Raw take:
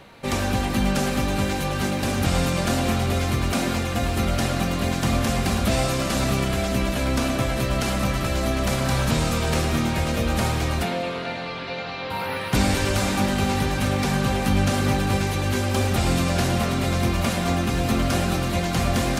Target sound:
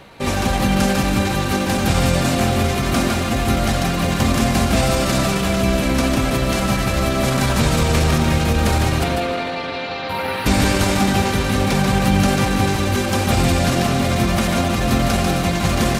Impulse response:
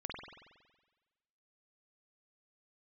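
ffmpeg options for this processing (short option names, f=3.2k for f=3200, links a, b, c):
-af "aecho=1:1:180|360|540|720:0.596|0.167|0.0467|0.0131,atempo=1.2,volume=4dB"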